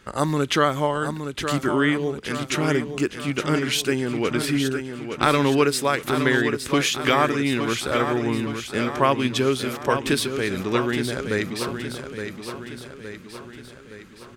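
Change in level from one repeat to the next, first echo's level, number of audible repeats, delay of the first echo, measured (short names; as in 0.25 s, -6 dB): -5.5 dB, -8.0 dB, 6, 0.867 s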